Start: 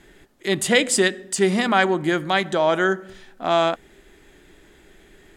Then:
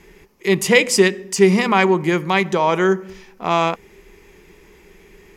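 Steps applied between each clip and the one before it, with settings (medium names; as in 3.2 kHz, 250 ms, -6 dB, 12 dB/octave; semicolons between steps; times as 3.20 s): rippled EQ curve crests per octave 0.81, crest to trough 10 dB; trim +2.5 dB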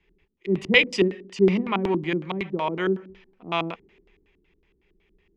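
LFO low-pass square 5.4 Hz 300–3000 Hz; three bands expanded up and down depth 40%; trim -9 dB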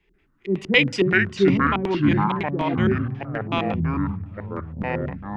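ever faster or slower copies 138 ms, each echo -5 st, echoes 3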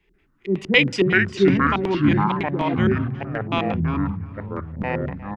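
delay 356 ms -19.5 dB; trim +1 dB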